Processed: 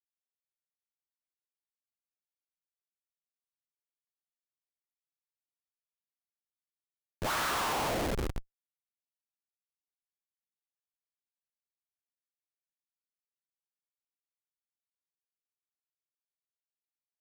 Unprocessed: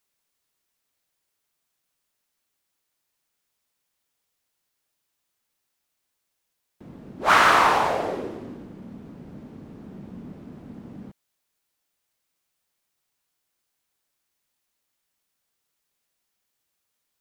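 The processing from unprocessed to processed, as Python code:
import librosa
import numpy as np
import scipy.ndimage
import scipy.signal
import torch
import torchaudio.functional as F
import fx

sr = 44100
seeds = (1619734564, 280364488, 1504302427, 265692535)

y = fx.peak_eq(x, sr, hz=64.0, db=-12.0, octaves=0.63)
y = fx.schmitt(y, sr, flips_db=-27.5)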